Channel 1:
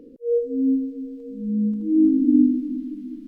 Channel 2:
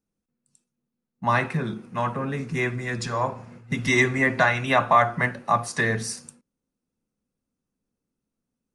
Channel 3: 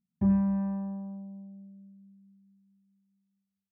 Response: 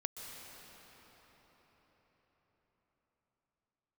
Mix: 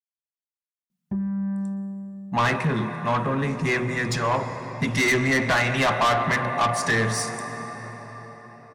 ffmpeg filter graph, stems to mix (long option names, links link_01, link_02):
-filter_complex "[1:a]highshelf=frequency=9400:gain=-4,bandreject=frequency=61.94:width_type=h:width=4,bandreject=frequency=123.88:width_type=h:width=4,bandreject=frequency=185.82:width_type=h:width=4,bandreject=frequency=247.76:width_type=h:width=4,bandreject=frequency=309.7:width_type=h:width=4,bandreject=frequency=371.64:width_type=h:width=4,bandreject=frequency=433.58:width_type=h:width=4,bandreject=frequency=495.52:width_type=h:width=4,bandreject=frequency=557.46:width_type=h:width=4,bandreject=frequency=619.4:width_type=h:width=4,bandreject=frequency=681.34:width_type=h:width=4,bandreject=frequency=743.28:width_type=h:width=4,bandreject=frequency=805.22:width_type=h:width=4,bandreject=frequency=867.16:width_type=h:width=4,bandreject=frequency=929.1:width_type=h:width=4,adelay=1100,volume=2.5dB,asplit=2[link_01][link_02];[link_02]volume=-5dB[link_03];[2:a]lowshelf=frequency=180:gain=-6,aecho=1:1:5.7:0.55,acompressor=threshold=-29dB:ratio=6,adelay=900,volume=2.5dB,asplit=2[link_04][link_05];[link_05]volume=-8.5dB[link_06];[3:a]atrim=start_sample=2205[link_07];[link_03][link_06]amix=inputs=2:normalize=0[link_08];[link_08][link_07]afir=irnorm=-1:irlink=0[link_09];[link_01][link_04][link_09]amix=inputs=3:normalize=0,asoftclip=type=tanh:threshold=-17dB"